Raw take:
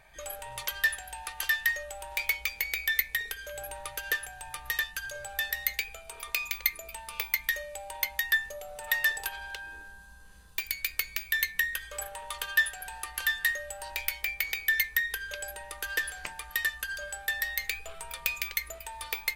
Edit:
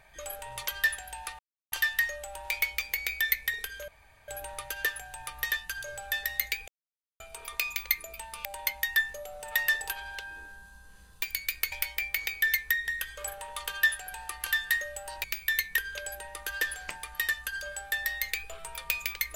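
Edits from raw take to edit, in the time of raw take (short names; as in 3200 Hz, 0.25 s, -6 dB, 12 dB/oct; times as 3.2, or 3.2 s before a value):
1.39 insert silence 0.33 s
3.55 insert room tone 0.40 s
5.95 insert silence 0.52 s
7.2–7.81 cut
11.08–11.62 swap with 13.98–15.14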